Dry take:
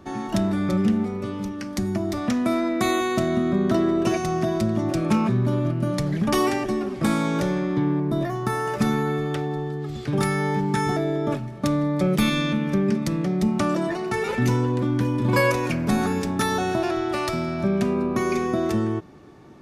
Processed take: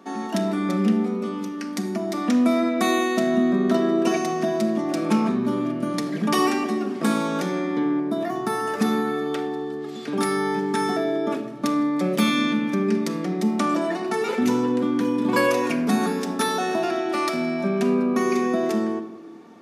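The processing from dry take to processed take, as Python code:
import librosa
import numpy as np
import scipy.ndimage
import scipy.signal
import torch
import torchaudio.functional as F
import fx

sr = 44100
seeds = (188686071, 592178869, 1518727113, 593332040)

y = scipy.signal.sosfilt(scipy.signal.butter(4, 210.0, 'highpass', fs=sr, output='sos'), x)
y = fx.room_shoebox(y, sr, seeds[0], volume_m3=3300.0, walls='furnished', distance_m=1.7)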